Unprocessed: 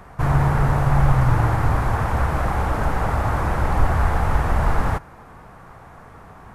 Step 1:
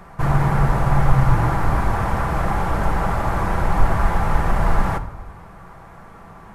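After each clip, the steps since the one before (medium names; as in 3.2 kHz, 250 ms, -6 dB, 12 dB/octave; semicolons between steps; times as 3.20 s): reverberation RT60 1.0 s, pre-delay 5 ms, DRR 6.5 dB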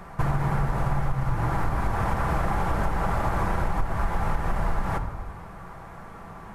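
compression 10:1, threshold -20 dBFS, peak gain reduction 14.5 dB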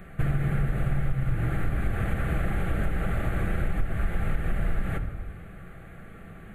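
static phaser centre 2.3 kHz, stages 4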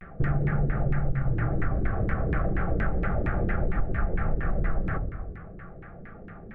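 LFO low-pass saw down 4.3 Hz 340–2100 Hz; vibrato 0.35 Hz 42 cents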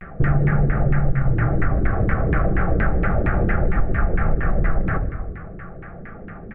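Chebyshev low-pass 2.5 kHz, order 2; feedback delay 77 ms, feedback 58%, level -20.5 dB; trim +8 dB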